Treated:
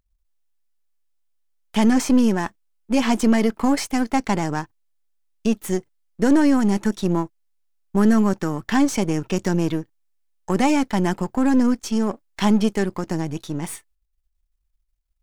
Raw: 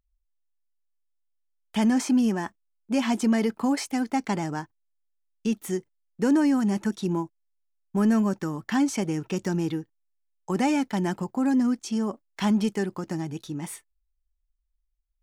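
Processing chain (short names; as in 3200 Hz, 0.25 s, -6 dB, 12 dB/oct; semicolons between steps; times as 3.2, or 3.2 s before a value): half-wave gain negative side -7 dB; gain +7.5 dB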